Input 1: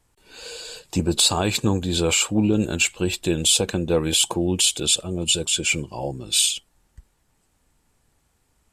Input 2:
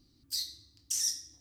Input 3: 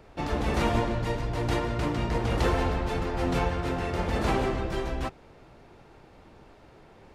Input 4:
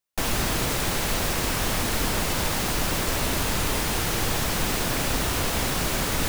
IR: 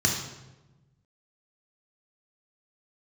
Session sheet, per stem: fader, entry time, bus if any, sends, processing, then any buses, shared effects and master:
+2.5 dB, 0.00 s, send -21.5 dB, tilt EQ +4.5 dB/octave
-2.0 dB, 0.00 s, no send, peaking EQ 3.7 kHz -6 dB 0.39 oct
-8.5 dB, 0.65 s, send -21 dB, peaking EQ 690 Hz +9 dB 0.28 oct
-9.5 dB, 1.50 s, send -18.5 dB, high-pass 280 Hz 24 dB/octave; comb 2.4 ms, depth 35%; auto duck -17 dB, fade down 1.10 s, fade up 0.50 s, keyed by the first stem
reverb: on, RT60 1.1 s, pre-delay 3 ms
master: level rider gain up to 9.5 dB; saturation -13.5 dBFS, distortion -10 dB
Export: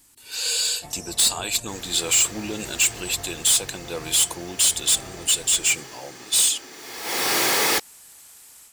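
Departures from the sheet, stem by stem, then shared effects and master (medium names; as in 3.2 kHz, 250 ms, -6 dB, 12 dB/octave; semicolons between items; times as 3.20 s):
stem 1: send off; stem 4 -9.5 dB -> -0.5 dB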